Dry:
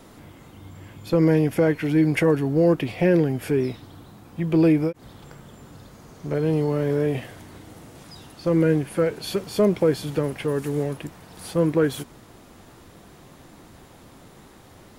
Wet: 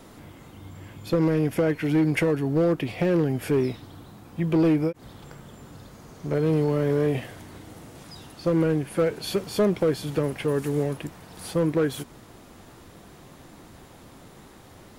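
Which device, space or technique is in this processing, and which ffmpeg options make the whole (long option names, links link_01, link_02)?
limiter into clipper: -af "alimiter=limit=-12.5dB:level=0:latency=1:release=337,asoftclip=type=hard:threshold=-16dB"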